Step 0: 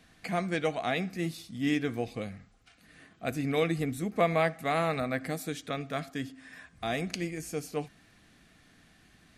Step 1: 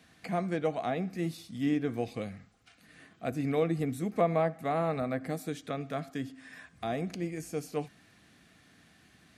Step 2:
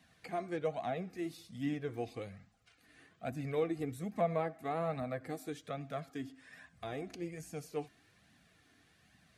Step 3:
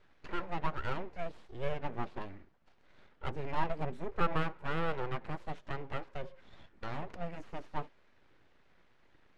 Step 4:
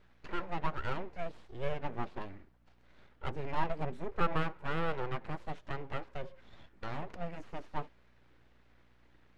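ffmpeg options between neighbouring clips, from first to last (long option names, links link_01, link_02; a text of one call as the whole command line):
ffmpeg -i in.wav -filter_complex "[0:a]acrossover=split=1200[link_01][link_02];[link_01]highpass=75[link_03];[link_02]acompressor=threshold=-45dB:ratio=6[link_04];[link_03][link_04]amix=inputs=2:normalize=0" out.wav
ffmpeg -i in.wav -af "flanger=delay=1:depth=2:regen=-22:speed=1.2:shape=triangular,volume=-2.5dB" out.wav
ffmpeg -i in.wav -af "aeval=exprs='abs(val(0))':channel_layout=same,adynamicsmooth=sensitivity=6.5:basefreq=2600,volume=5dB" out.wav
ffmpeg -i in.wav -af "aeval=exprs='val(0)+0.000398*(sin(2*PI*60*n/s)+sin(2*PI*2*60*n/s)/2+sin(2*PI*3*60*n/s)/3+sin(2*PI*4*60*n/s)/4+sin(2*PI*5*60*n/s)/5)':channel_layout=same" out.wav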